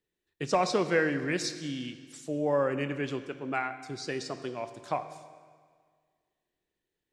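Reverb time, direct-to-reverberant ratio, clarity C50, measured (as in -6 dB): 1.8 s, 10.0 dB, 11.5 dB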